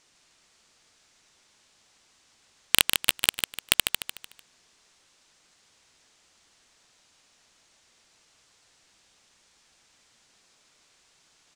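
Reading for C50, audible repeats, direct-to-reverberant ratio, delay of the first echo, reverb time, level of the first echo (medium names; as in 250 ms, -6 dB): no reverb, 4, no reverb, 149 ms, no reverb, -5.5 dB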